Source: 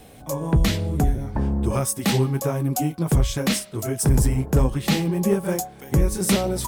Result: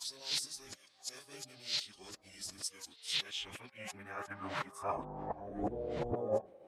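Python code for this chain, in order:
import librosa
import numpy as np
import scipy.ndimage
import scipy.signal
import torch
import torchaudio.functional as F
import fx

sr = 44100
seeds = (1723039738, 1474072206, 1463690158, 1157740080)

y = x[::-1].copy()
y = fx.filter_sweep_bandpass(y, sr, from_hz=4500.0, to_hz=570.0, start_s=2.8, end_s=5.71, q=3.1)
y = fx.pitch_keep_formants(y, sr, semitones=-5.5)
y = y * 10.0 ** (-1.0 / 20.0)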